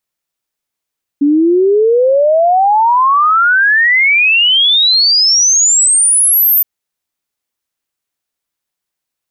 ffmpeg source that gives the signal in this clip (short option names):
-f lavfi -i "aevalsrc='0.473*clip(min(t,5.42-t)/0.01,0,1)*sin(2*PI*280*5.42/log(14000/280)*(exp(log(14000/280)*t/5.42)-1))':d=5.42:s=44100"